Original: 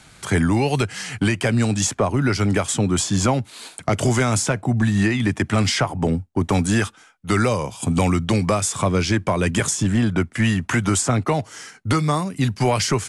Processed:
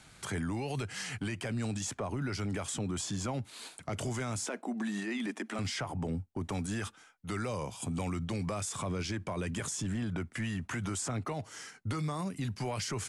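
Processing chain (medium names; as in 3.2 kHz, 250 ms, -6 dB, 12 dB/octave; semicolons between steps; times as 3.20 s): 4.46–5.59 s: elliptic high-pass 220 Hz, stop band 40 dB; peak limiter -19 dBFS, peak gain reduction 10.5 dB; trim -8.5 dB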